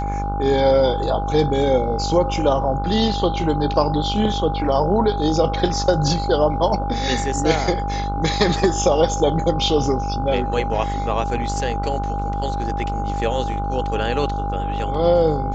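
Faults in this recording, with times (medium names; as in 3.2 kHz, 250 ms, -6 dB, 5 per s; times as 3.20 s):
buzz 50 Hz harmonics 30 -25 dBFS
whine 810 Hz -25 dBFS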